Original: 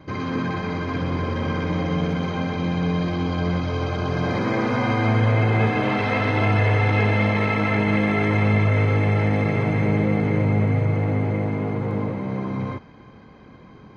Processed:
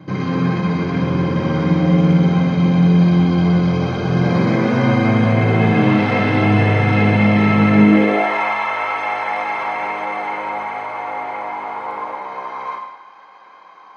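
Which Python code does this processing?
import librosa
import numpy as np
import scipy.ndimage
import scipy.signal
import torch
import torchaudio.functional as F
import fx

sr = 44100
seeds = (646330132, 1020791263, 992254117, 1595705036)

y = fx.filter_sweep_highpass(x, sr, from_hz=150.0, to_hz=930.0, start_s=7.71, end_s=8.35, q=3.0)
y = fx.rev_gated(y, sr, seeds[0], gate_ms=310, shape='falling', drr_db=1.0)
y = y * 10.0 ** (1.5 / 20.0)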